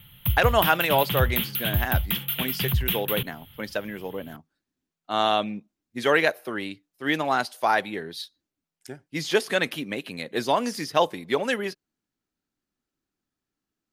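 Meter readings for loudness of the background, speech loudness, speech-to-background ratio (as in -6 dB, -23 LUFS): -26.0 LUFS, -26.0 LUFS, 0.0 dB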